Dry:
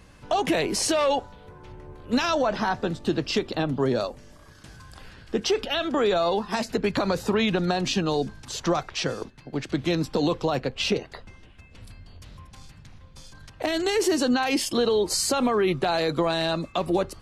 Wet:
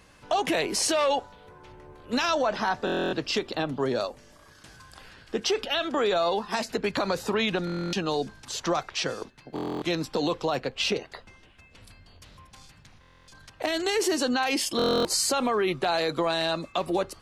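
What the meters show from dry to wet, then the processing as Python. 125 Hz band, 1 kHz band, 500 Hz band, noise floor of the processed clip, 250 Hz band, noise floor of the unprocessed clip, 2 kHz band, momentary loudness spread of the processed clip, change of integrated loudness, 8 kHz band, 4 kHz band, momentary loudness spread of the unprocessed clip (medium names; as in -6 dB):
-6.0 dB, -1.0 dB, -2.5 dB, -56 dBFS, -4.5 dB, -51 dBFS, 0.0 dB, 7 LU, -2.0 dB, 0.0 dB, 0.0 dB, 7 LU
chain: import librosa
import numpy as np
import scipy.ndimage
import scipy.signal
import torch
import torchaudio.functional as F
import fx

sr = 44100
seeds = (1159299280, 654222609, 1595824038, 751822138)

y = fx.low_shelf(x, sr, hz=280.0, db=-9.0)
y = fx.buffer_glitch(y, sr, at_s=(2.85, 7.65, 9.54, 13.0, 14.77), block=1024, repeats=11)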